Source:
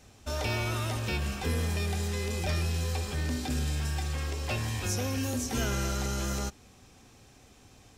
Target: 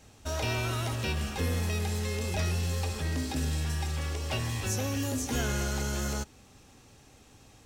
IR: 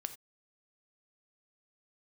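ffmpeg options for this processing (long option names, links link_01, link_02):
-af "asetrate=45938,aresample=44100"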